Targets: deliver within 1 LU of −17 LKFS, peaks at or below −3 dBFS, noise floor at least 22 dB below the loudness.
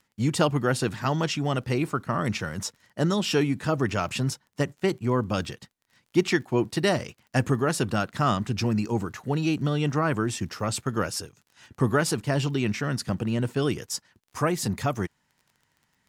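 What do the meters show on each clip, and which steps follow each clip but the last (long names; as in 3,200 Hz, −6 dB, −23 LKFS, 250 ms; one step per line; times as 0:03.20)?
crackle rate 28 per second; integrated loudness −27.0 LKFS; sample peak −8.0 dBFS; target loudness −17.0 LKFS
→ click removal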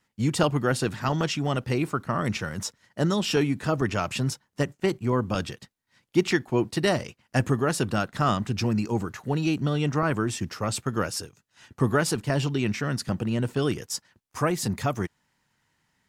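crackle rate 0.062 per second; integrated loudness −27.0 LKFS; sample peak −8.0 dBFS; target loudness −17.0 LKFS
→ level +10 dB
brickwall limiter −3 dBFS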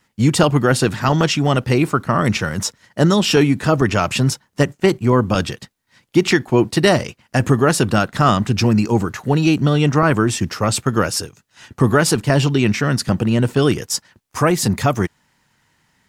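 integrated loudness −17.0 LKFS; sample peak −3.0 dBFS; background noise floor −66 dBFS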